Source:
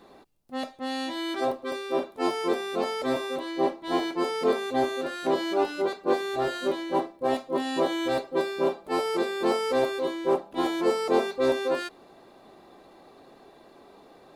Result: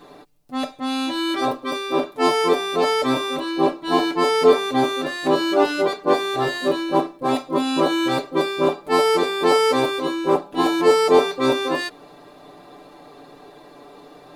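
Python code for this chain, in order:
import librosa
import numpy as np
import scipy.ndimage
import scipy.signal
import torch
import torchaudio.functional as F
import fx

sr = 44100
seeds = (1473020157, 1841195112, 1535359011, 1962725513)

y = x + 0.84 * np.pad(x, (int(6.8 * sr / 1000.0), 0))[:len(x)]
y = y * librosa.db_to_amplitude(6.0)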